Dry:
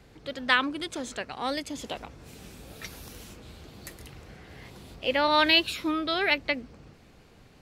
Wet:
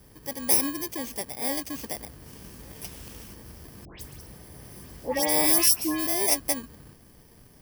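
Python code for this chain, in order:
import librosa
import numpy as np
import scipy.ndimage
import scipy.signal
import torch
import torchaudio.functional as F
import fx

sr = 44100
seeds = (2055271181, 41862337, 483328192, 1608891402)

y = fx.bit_reversed(x, sr, seeds[0], block=32)
y = fx.dispersion(y, sr, late='highs', ms=145.0, hz=1900.0, at=(3.85, 6.07))
y = y * 10.0 ** (1.5 / 20.0)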